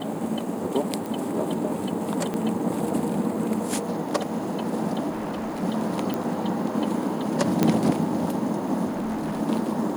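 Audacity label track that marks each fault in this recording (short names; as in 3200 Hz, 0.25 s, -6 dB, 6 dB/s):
1.060000	1.060000	pop
2.340000	2.340000	pop -16 dBFS
5.090000	5.640000	clipped -27 dBFS
6.140000	6.140000	pop -13 dBFS
7.630000	7.630000	pop -6 dBFS
8.870000	9.410000	clipped -25 dBFS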